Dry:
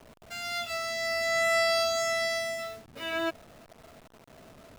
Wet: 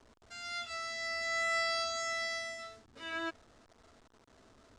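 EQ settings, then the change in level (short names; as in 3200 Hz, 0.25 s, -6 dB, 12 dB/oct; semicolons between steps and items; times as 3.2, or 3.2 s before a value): LPF 8200 Hz 24 dB/oct; dynamic EQ 1900 Hz, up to +4 dB, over -38 dBFS, Q 0.95; fifteen-band EQ 160 Hz -11 dB, 630 Hz -7 dB, 2500 Hz -6 dB; -6.0 dB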